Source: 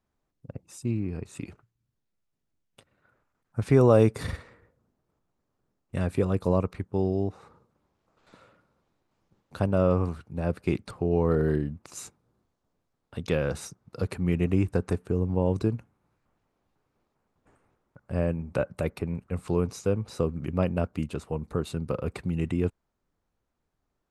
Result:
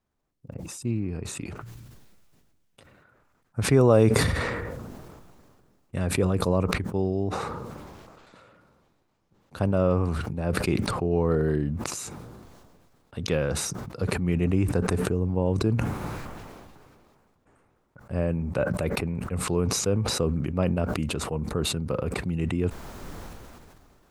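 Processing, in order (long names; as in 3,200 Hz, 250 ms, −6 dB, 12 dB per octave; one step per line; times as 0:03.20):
level that may fall only so fast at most 27 dB per second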